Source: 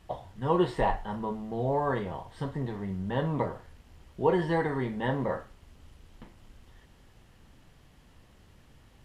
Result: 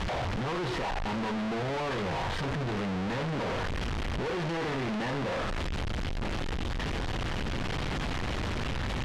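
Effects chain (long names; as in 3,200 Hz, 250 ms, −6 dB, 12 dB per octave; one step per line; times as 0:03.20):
sign of each sample alone
low-pass filter 3,900 Hz 12 dB per octave
level +1.5 dB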